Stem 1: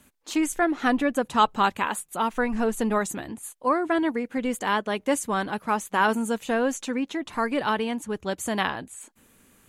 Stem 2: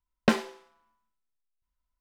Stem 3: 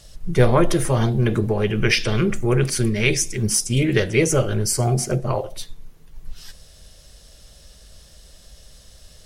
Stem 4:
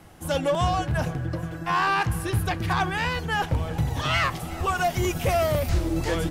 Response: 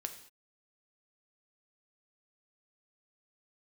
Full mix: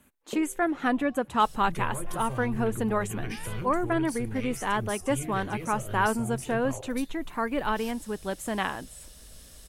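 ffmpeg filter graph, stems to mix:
-filter_complex "[0:a]volume=-3dB,asplit=2[link_01][link_02];[1:a]lowpass=frequency=450:width_type=q:width=4.9,adelay=50,volume=-19.5dB[link_03];[2:a]acompressor=threshold=-29dB:ratio=2,highshelf=frequency=4000:gain=10.5,acrossover=split=120[link_04][link_05];[link_05]acompressor=threshold=-34dB:ratio=4[link_06];[link_04][link_06]amix=inputs=2:normalize=0,adelay=1400,volume=-4dB[link_07];[3:a]alimiter=limit=-21.5dB:level=0:latency=1,adelay=400,volume=-11dB[link_08];[link_02]apad=whole_len=295660[link_09];[link_08][link_09]sidechaincompress=threshold=-38dB:ratio=8:attack=29:release=346[link_10];[link_01][link_03][link_07][link_10]amix=inputs=4:normalize=0,equalizer=frequency=5300:width_type=o:width=1.1:gain=-7.5"

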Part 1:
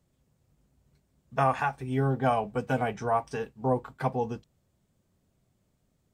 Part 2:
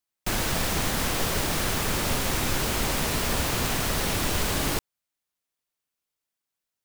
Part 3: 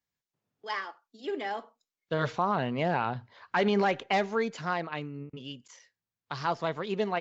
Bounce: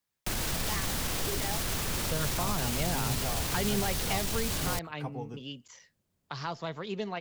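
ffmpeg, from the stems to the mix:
ffmpeg -i stem1.wav -i stem2.wav -i stem3.wav -filter_complex "[0:a]adelay=1000,volume=-7.5dB[link_01];[1:a]alimiter=limit=-20dB:level=0:latency=1:release=25,volume=-1dB[link_02];[2:a]volume=0.5dB[link_03];[link_01][link_02][link_03]amix=inputs=3:normalize=0,acrossover=split=180|3000[link_04][link_05][link_06];[link_05]acompressor=threshold=-39dB:ratio=2[link_07];[link_04][link_07][link_06]amix=inputs=3:normalize=0" out.wav

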